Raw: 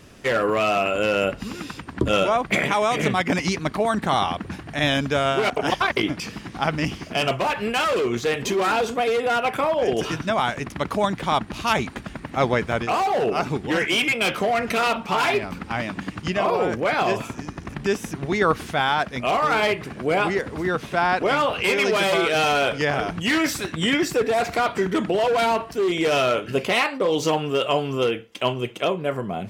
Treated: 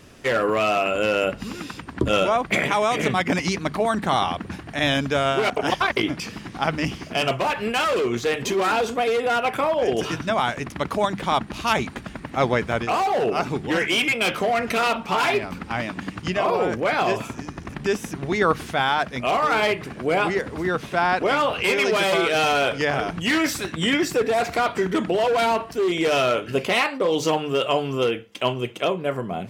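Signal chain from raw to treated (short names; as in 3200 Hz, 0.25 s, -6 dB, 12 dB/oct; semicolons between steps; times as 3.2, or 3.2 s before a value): notches 50/100/150/200 Hz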